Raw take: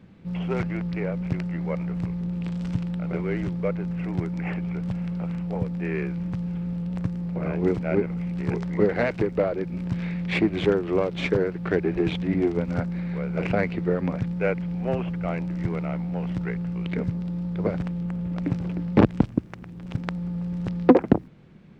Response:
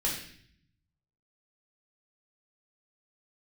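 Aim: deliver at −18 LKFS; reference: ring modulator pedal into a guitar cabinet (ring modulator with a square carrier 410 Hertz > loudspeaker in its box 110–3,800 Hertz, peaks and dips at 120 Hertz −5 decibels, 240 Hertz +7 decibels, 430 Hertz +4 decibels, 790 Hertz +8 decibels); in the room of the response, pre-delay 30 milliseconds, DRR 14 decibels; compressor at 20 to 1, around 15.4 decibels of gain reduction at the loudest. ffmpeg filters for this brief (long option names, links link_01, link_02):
-filter_complex "[0:a]acompressor=threshold=-25dB:ratio=20,asplit=2[link_01][link_02];[1:a]atrim=start_sample=2205,adelay=30[link_03];[link_02][link_03]afir=irnorm=-1:irlink=0,volume=-20.5dB[link_04];[link_01][link_04]amix=inputs=2:normalize=0,aeval=exprs='val(0)*sgn(sin(2*PI*410*n/s))':channel_layout=same,highpass=110,equalizer=frequency=120:width_type=q:width=4:gain=-5,equalizer=frequency=240:width_type=q:width=4:gain=7,equalizer=frequency=430:width_type=q:width=4:gain=4,equalizer=frequency=790:width_type=q:width=4:gain=8,lowpass=frequency=3800:width=0.5412,lowpass=frequency=3800:width=1.3066,volume=9dB"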